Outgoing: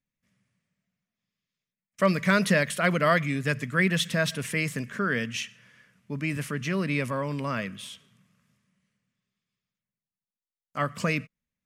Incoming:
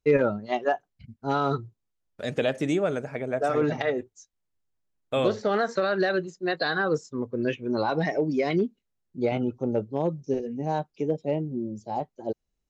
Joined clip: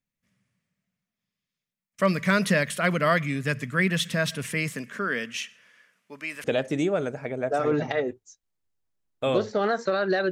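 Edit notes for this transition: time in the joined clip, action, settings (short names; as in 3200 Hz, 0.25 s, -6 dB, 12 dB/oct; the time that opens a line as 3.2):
outgoing
4.69–6.44 HPF 190 Hz -> 640 Hz
6.44 switch to incoming from 2.34 s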